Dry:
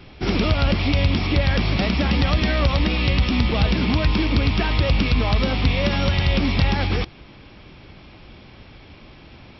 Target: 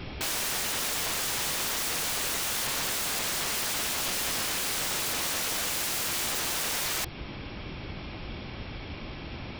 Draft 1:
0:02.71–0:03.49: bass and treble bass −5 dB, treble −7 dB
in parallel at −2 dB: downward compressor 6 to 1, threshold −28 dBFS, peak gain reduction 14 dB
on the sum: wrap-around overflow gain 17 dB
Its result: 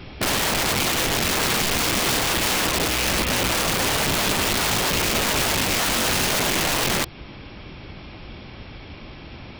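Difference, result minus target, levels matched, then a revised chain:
wrap-around overflow: distortion −11 dB
0:02.71–0:03.49: bass and treble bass −5 dB, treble −7 dB
in parallel at −2 dB: downward compressor 6 to 1, threshold −28 dBFS, peak gain reduction 14 dB
on the sum: wrap-around overflow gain 25.5 dB

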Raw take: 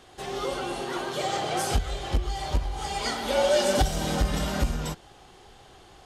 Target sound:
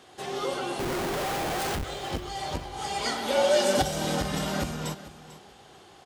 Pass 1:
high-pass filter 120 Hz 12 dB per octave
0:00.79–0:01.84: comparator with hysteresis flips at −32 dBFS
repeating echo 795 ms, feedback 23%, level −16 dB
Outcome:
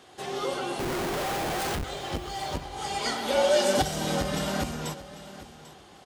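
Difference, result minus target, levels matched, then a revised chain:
echo 350 ms late
high-pass filter 120 Hz 12 dB per octave
0:00.79–0:01.84: comparator with hysteresis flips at −32 dBFS
repeating echo 445 ms, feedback 23%, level −16 dB

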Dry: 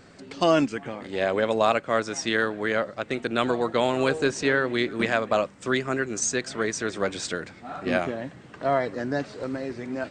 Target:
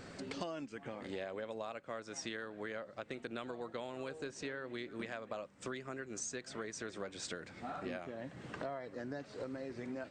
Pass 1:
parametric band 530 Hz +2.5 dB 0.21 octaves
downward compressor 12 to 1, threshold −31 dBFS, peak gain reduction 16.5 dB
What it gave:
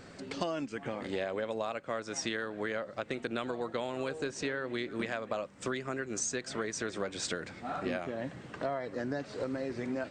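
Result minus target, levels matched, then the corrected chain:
downward compressor: peak gain reduction −8 dB
parametric band 530 Hz +2.5 dB 0.21 octaves
downward compressor 12 to 1, threshold −39.5 dBFS, peak gain reduction 24.5 dB

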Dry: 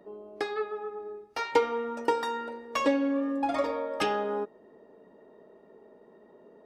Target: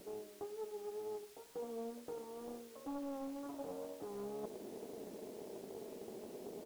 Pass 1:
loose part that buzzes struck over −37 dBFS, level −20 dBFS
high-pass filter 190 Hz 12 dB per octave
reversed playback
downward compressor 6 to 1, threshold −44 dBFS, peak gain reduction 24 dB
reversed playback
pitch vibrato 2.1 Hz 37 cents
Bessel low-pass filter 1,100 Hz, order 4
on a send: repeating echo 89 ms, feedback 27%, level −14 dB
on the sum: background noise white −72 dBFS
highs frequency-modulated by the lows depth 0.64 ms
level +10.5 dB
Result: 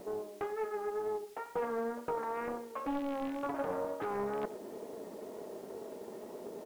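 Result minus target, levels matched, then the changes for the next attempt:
downward compressor: peak gain reduction −5.5 dB; 1,000 Hz band +5.5 dB
change: downward compressor 6 to 1, threshold −50.5 dBFS, peak gain reduction 29.5 dB
change: Bessel low-pass filter 420 Hz, order 4

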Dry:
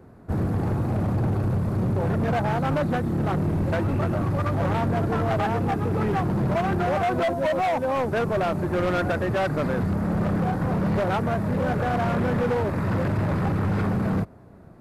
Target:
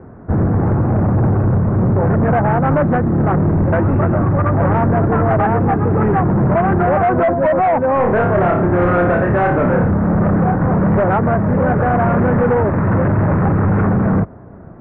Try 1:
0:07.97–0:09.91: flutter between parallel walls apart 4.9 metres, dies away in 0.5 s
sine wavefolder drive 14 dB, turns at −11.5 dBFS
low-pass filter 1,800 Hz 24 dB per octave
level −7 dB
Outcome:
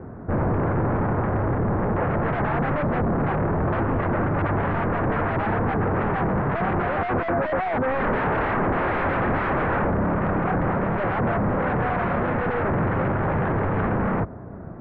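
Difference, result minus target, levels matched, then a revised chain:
sine wavefolder: distortion +19 dB
0:07.97–0:09.91: flutter between parallel walls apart 4.9 metres, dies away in 0.5 s
sine wavefolder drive 14 dB, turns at −3 dBFS
low-pass filter 1,800 Hz 24 dB per octave
level −7 dB

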